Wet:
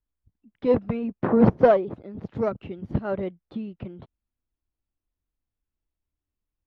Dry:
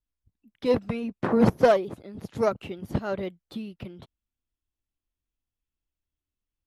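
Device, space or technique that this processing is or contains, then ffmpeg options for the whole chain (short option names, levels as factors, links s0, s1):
phone in a pocket: -filter_complex "[0:a]asettb=1/sr,asplit=3[s0][s1][s2];[s0]atrim=end=2.404[s3];[s1]atrim=start=2.4:end=3.05,asetpts=PTS-STARTPTS,afade=t=in:d=0.004:c=qsin,afade=t=out:st=0.646:d=0.004:c=qsin,equalizer=f=800:t=o:w=2.3:g=-5[s4];[s2]atrim=start=3.046[s5];[s3][s4]acrossfade=d=0.004:c1=hsin:c2=qsin[s6];[s6][s5]acrossfade=d=0.004:c1=qsin:c2=hsin,lowpass=3400,highshelf=f=2100:g=-11.5,volume=1.41"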